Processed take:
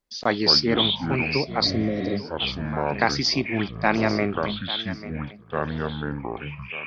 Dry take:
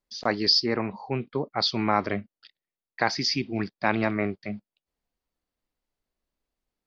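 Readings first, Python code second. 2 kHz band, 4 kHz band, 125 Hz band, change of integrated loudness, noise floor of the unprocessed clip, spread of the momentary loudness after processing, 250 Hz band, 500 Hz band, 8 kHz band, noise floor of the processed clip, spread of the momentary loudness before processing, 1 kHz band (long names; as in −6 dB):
+4.5 dB, +5.0 dB, +6.5 dB, +2.0 dB, below −85 dBFS, 14 LU, +4.5 dB, +4.5 dB, can't be measured, −42 dBFS, 12 LU, +2.5 dB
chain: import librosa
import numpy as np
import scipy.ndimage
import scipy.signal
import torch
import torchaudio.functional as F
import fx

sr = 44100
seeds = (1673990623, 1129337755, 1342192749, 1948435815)

y = fx.echo_thinned(x, sr, ms=844, feedback_pct=25, hz=210.0, wet_db=-14)
y = fx.echo_pitch(y, sr, ms=105, semitones=-6, count=2, db_per_echo=-6.0)
y = fx.spec_repair(y, sr, seeds[0], start_s=1.67, length_s=0.46, low_hz=580.0, high_hz=3700.0, source='after')
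y = y * 10.0 ** (3.0 / 20.0)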